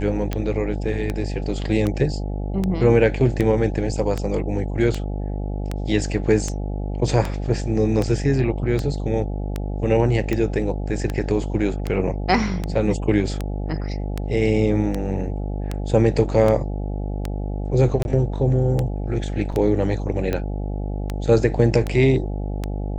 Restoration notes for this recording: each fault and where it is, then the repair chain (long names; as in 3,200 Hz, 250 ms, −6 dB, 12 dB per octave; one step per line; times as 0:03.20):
mains buzz 50 Hz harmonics 17 −26 dBFS
scratch tick 78 rpm −11 dBFS
0:18.03–0:18.05: drop-out 21 ms
0:19.52–0:19.53: drop-out 5.7 ms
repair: click removal
hum removal 50 Hz, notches 17
repair the gap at 0:18.03, 21 ms
repair the gap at 0:19.52, 5.7 ms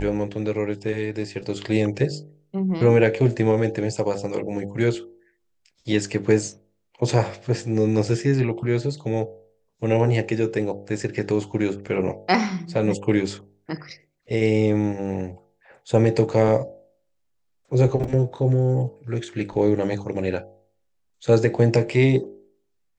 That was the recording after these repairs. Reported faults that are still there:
none of them is left